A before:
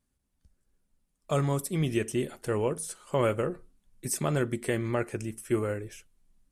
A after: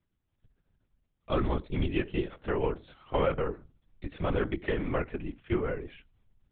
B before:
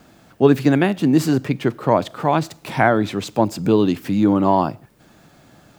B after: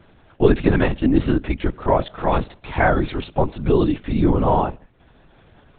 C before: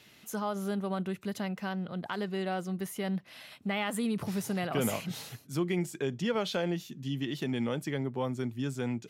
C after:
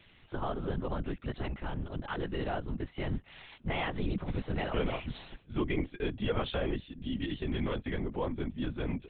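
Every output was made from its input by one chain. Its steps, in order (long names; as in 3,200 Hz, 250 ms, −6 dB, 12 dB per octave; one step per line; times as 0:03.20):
linear-prediction vocoder at 8 kHz whisper
level −1 dB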